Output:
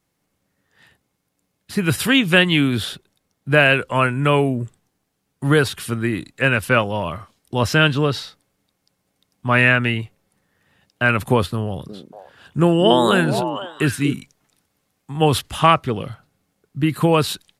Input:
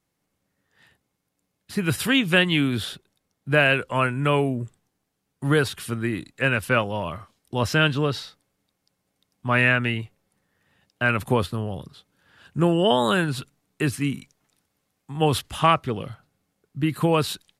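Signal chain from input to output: 11.65–14.14 s: repeats whose band climbs or falls 237 ms, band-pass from 290 Hz, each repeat 1.4 oct, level -3 dB; trim +4.5 dB

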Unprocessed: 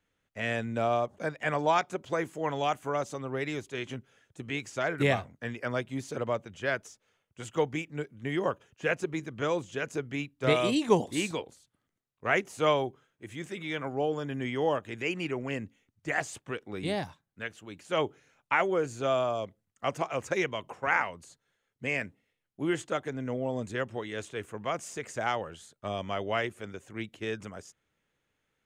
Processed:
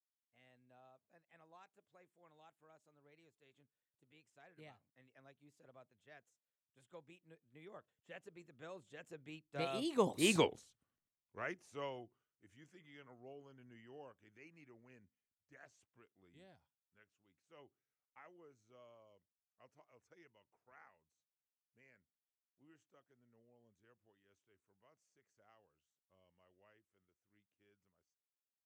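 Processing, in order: Doppler pass-by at 10.39 s, 29 m/s, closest 2.9 m; trim +3 dB

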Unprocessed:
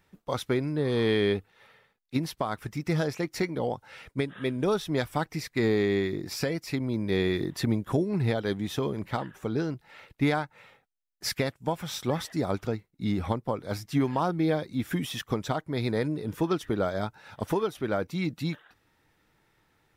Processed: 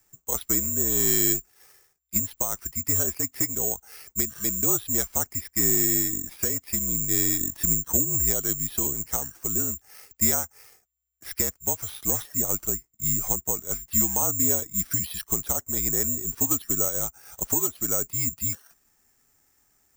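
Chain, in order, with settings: careless resampling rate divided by 6×, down filtered, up zero stuff; frequency shift -61 Hz; trim -5 dB

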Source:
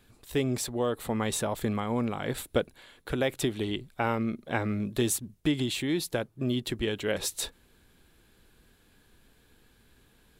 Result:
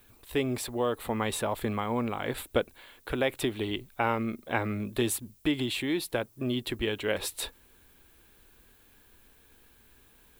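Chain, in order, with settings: fifteen-band graphic EQ 160 Hz -7 dB, 1 kHz +3 dB, 2.5 kHz +3 dB, 6.3 kHz -8 dB; added noise violet -63 dBFS

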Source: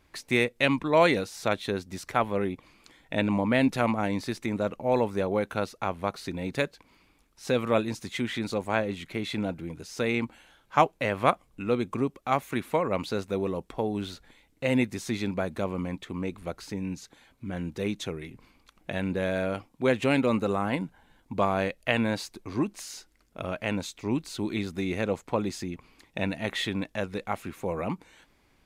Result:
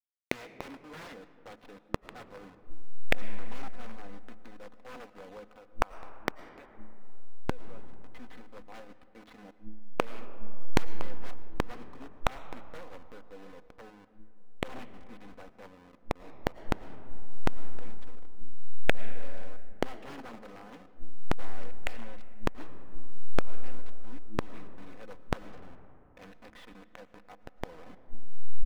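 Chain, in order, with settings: send-on-delta sampling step -26 dBFS; de-hum 107.2 Hz, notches 3; expander -44 dBFS; comb 4 ms, depth 66%; 5.49–7.93 s: compression 4:1, threshold -32 dBFS, peak gain reduction 13 dB; integer overflow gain 16.5 dB; overdrive pedal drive 12 dB, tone 1.7 kHz, clips at -18 dBFS; inverted gate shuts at -36 dBFS, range -39 dB; algorithmic reverb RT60 3.1 s, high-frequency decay 0.35×, pre-delay 70 ms, DRR 14.5 dB; trim +18 dB

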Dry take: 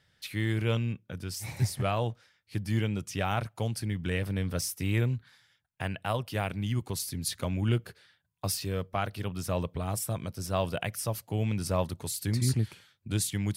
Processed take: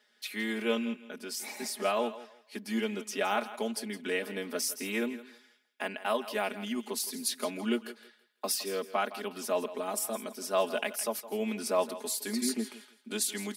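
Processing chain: elliptic high-pass 230 Hz, stop band 40 dB; comb 4.8 ms, depth 82%; thinning echo 164 ms, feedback 26%, high-pass 320 Hz, level -14 dB

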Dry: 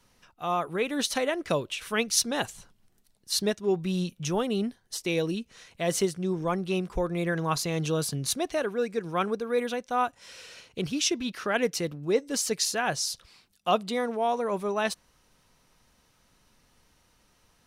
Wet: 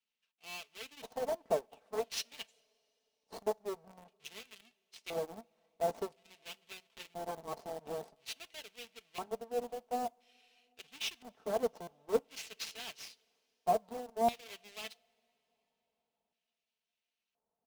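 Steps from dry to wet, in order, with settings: square wave that keeps the level; Chebyshev shaper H 6 -7 dB, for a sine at -10.5 dBFS; comb 4.5 ms, depth 50%; LFO band-pass square 0.49 Hz 750–2700 Hz; in parallel at -9.5 dB: bit crusher 5-bit; on the sum: peaking EQ 1.5 kHz -12 dB 2.4 oct; on a send at -17 dB: reverberation, pre-delay 3 ms; on the sum: buffer glitch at 11.82 s, samples 256, times 8; upward expansion 1.5:1, over -44 dBFS; trim -2.5 dB

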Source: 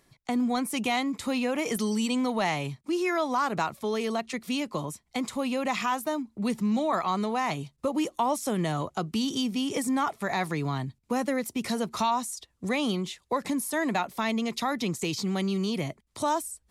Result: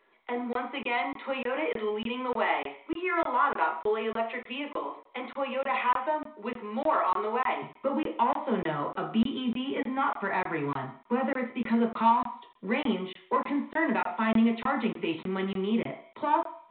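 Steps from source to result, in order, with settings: high-pass 320 Hz 24 dB/octave, from 7.62 s 95 Hz; saturation -18.5 dBFS, distortion -22 dB; reverberation RT60 0.50 s, pre-delay 3 ms, DRR 1 dB; crackling interface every 0.30 s, samples 1024, zero, from 0.53 s; trim -6.5 dB; µ-law 64 kbps 8 kHz

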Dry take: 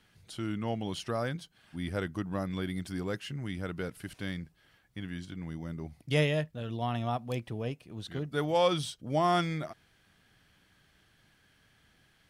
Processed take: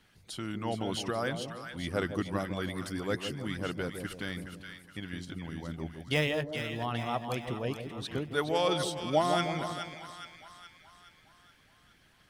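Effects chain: 6.14–6.86 s: median filter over 5 samples; two-band feedback delay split 990 Hz, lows 159 ms, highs 419 ms, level -7 dB; harmonic-percussive split harmonic -9 dB; trim +4.5 dB

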